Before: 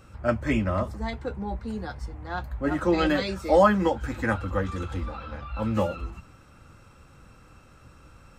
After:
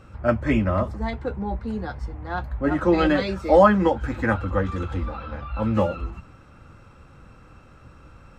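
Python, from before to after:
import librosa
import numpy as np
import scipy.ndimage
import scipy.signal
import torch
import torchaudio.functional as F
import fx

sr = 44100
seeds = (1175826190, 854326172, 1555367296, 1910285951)

y = fx.lowpass(x, sr, hz=2700.0, slope=6)
y = F.gain(torch.from_numpy(y), 4.0).numpy()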